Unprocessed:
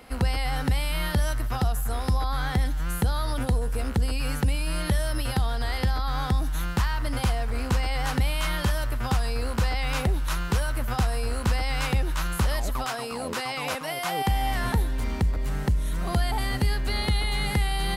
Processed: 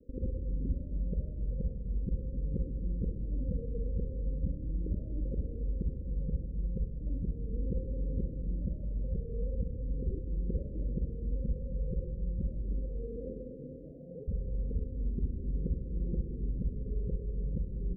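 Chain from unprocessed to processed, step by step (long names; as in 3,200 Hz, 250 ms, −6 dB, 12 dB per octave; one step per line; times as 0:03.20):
reversed piece by piece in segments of 43 ms
Butterworth low-pass 540 Hz 96 dB per octave
dynamic equaliser 100 Hz, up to −6 dB, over −39 dBFS, Q 2
flanger 0.38 Hz, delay 0.1 ms, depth 1.8 ms, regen −30%
on a send: convolution reverb RT60 3.1 s, pre-delay 28 ms, DRR 4 dB
on the sum: level −6 dB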